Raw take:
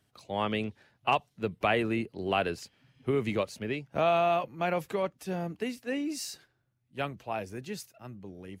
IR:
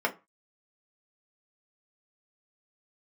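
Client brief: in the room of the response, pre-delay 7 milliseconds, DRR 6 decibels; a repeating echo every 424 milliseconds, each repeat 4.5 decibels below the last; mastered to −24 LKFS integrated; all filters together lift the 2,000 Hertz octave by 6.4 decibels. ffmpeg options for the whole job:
-filter_complex "[0:a]equalizer=frequency=2000:width_type=o:gain=8.5,aecho=1:1:424|848|1272|1696|2120|2544|2968|3392|3816:0.596|0.357|0.214|0.129|0.0772|0.0463|0.0278|0.0167|0.01,asplit=2[link_01][link_02];[1:a]atrim=start_sample=2205,adelay=7[link_03];[link_02][link_03]afir=irnorm=-1:irlink=0,volume=-16.5dB[link_04];[link_01][link_04]amix=inputs=2:normalize=0,volume=3dB"

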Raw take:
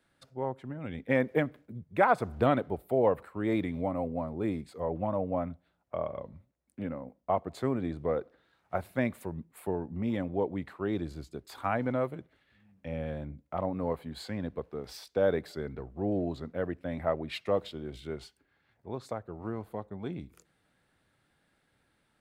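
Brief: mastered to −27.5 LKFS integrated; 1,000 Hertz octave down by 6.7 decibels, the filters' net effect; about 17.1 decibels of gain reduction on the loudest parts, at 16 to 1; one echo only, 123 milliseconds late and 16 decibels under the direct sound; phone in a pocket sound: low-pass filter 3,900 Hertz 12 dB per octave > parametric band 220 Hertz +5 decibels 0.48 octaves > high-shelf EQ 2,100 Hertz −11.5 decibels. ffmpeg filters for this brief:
ffmpeg -i in.wav -af "equalizer=frequency=1000:width_type=o:gain=-7.5,acompressor=threshold=-39dB:ratio=16,lowpass=3900,equalizer=frequency=220:width_type=o:width=0.48:gain=5,highshelf=frequency=2100:gain=-11.5,aecho=1:1:123:0.158,volume=17dB" out.wav

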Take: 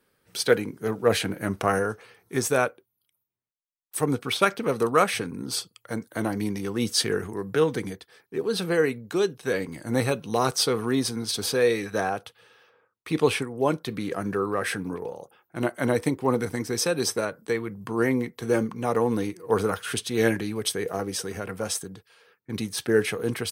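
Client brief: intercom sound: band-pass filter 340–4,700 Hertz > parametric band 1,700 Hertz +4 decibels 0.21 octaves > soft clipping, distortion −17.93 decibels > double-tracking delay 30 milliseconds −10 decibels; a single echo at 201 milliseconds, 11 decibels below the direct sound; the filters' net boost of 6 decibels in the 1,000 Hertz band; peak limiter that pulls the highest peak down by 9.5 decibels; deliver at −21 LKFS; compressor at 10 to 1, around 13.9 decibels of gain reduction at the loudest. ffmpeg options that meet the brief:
ffmpeg -i in.wav -filter_complex "[0:a]equalizer=frequency=1000:width_type=o:gain=8,acompressor=threshold=-26dB:ratio=10,alimiter=limit=-22dB:level=0:latency=1,highpass=340,lowpass=4700,equalizer=frequency=1700:width_type=o:width=0.21:gain=4,aecho=1:1:201:0.282,asoftclip=threshold=-26.5dB,asplit=2[link_01][link_02];[link_02]adelay=30,volume=-10dB[link_03];[link_01][link_03]amix=inputs=2:normalize=0,volume=15.5dB" out.wav

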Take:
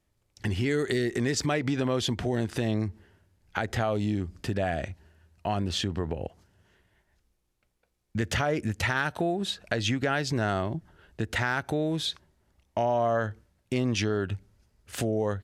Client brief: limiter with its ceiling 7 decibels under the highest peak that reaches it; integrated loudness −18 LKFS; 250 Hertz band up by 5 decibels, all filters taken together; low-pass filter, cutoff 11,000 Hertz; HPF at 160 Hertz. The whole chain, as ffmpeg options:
ffmpeg -i in.wav -af "highpass=160,lowpass=11000,equalizer=frequency=250:width_type=o:gain=7,volume=10dB,alimiter=limit=-6dB:level=0:latency=1" out.wav

